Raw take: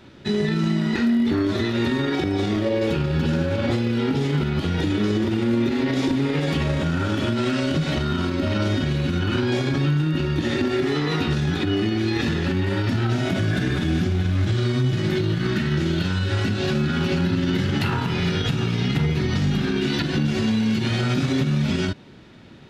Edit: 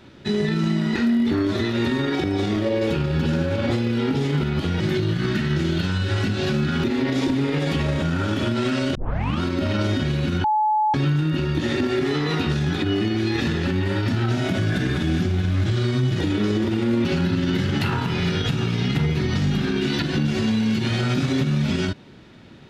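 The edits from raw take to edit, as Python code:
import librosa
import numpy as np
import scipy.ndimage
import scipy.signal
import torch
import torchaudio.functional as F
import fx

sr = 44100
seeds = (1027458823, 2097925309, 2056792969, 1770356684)

y = fx.edit(x, sr, fx.swap(start_s=4.8, length_s=0.85, other_s=15.01, other_length_s=2.04),
    fx.tape_start(start_s=7.76, length_s=0.46),
    fx.bleep(start_s=9.25, length_s=0.5, hz=857.0, db=-16.5), tone=tone)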